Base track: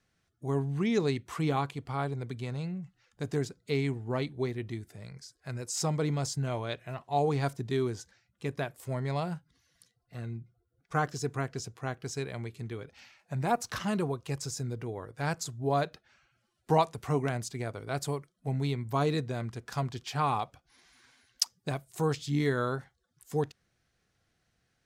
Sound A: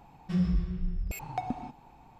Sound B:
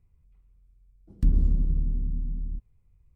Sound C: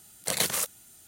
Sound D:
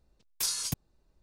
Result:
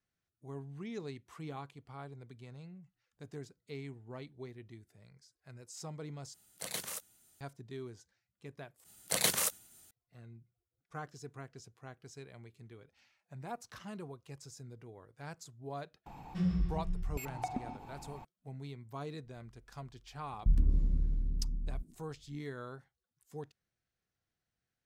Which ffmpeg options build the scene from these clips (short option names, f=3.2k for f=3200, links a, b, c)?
-filter_complex "[3:a]asplit=2[a][b];[0:a]volume=-14.5dB[c];[b]agate=range=-33dB:threshold=-51dB:ratio=3:release=100:detection=peak[d];[1:a]acompressor=mode=upward:threshold=-34dB:ratio=2.5:attack=3.2:release=140:knee=2.83:detection=peak[e];[2:a]acrossover=split=190[f][g];[g]adelay=120[h];[f][h]amix=inputs=2:normalize=0[i];[c]asplit=3[j][k][l];[j]atrim=end=6.344[m];[a]atrim=end=1.07,asetpts=PTS-STARTPTS,volume=-13dB[n];[k]atrim=start=7.406:end=8.844[o];[d]atrim=end=1.07,asetpts=PTS-STARTPTS,volume=-3dB[p];[l]atrim=start=9.906[q];[e]atrim=end=2.19,asetpts=PTS-STARTPTS,volume=-4.5dB,afade=t=in:d=0.004:c=hsin,afade=t=out:st=2.186:d=0.004:c=hsin,adelay=16060[r];[i]atrim=end=3.15,asetpts=PTS-STARTPTS,volume=-5.5dB,afade=t=in:d=0.004:c=hsin,afade=t=out:st=3.146:d=0.004:c=hsin,adelay=19230[s];[m][n]acrossfade=d=0.004:c1=hsin:c2=hsin[t];[t][o]acrossfade=d=0.004:c1=hsin:c2=hsin[u];[u][p]acrossfade=d=0.004:c1=hsin:c2=hsin[v];[v][q]acrossfade=d=0.004:c1=hsin:c2=hsin[w];[w][r][s]amix=inputs=3:normalize=0"